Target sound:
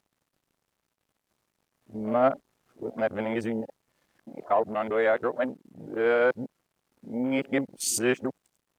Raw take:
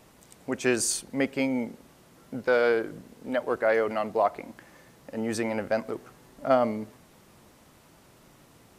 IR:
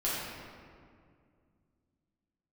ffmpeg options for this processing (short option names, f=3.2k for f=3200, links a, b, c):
-af "areverse,acrusher=bits=7:mix=0:aa=0.5,afwtdn=0.0158"